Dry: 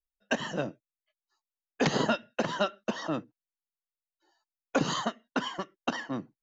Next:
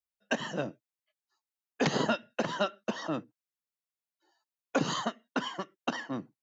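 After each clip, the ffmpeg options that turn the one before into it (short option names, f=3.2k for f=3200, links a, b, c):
-af "highpass=81,volume=-1.5dB"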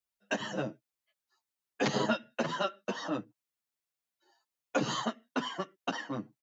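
-filter_complex "[0:a]asplit=2[a][b];[b]acompressor=threshold=-39dB:ratio=6,volume=-1dB[c];[a][c]amix=inputs=2:normalize=0,asplit=2[d][e];[e]adelay=8.2,afreqshift=0.7[f];[d][f]amix=inputs=2:normalize=1"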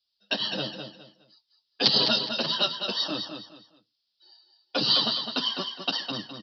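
-af "aexciter=amount=13.1:drive=5.6:freq=3.3k,aecho=1:1:207|414|621:0.447|0.125|0.035,aresample=11025,aresample=44100"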